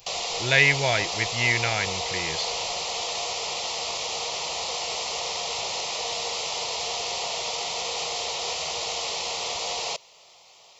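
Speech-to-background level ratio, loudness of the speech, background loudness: 4.5 dB, −23.5 LKFS, −28.0 LKFS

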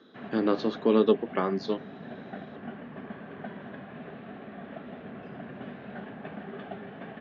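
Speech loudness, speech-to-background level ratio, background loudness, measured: −27.0 LKFS, 15.5 dB, −42.5 LKFS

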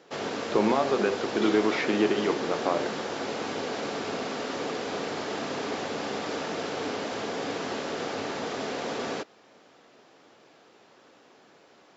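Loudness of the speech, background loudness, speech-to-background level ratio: −27.0 LKFS, −32.5 LKFS, 5.5 dB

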